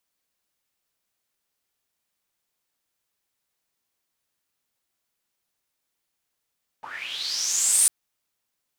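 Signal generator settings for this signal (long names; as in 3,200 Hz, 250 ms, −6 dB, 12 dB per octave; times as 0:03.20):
filter sweep on noise pink, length 1.05 s bandpass, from 810 Hz, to 9,400 Hz, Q 7.4, linear, gain ramp +23 dB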